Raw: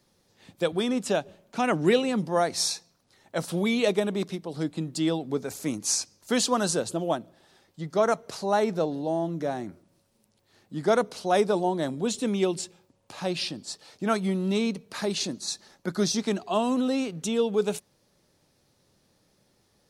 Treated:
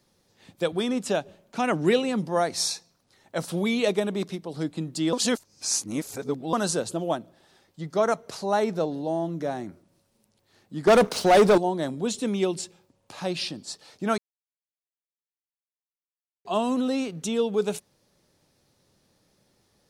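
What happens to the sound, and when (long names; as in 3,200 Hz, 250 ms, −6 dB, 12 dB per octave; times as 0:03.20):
0:05.13–0:06.53: reverse
0:10.87–0:11.58: leveller curve on the samples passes 3
0:14.18–0:16.45: silence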